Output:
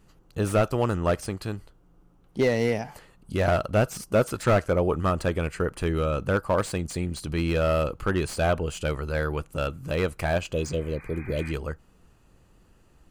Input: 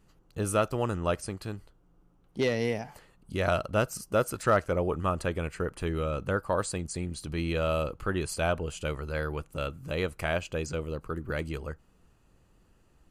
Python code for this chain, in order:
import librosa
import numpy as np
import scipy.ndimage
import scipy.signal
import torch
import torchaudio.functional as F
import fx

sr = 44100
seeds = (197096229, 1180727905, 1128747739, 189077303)

y = fx.spec_repair(x, sr, seeds[0], start_s=10.55, length_s=0.94, low_hz=690.0, high_hz=2500.0, source='both')
y = fx.slew_limit(y, sr, full_power_hz=69.0)
y = F.gain(torch.from_numpy(y), 5.0).numpy()